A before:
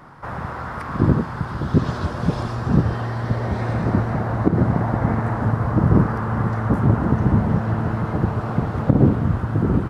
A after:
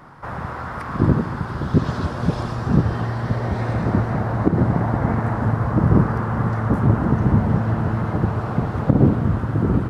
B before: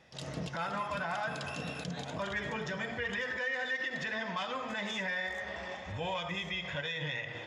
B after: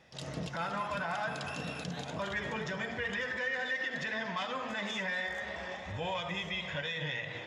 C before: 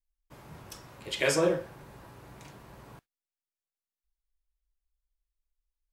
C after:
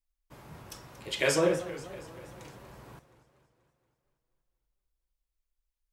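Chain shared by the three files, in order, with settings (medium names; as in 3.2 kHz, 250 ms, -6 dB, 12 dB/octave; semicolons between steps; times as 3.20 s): modulated delay 238 ms, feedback 57%, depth 200 cents, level -15 dB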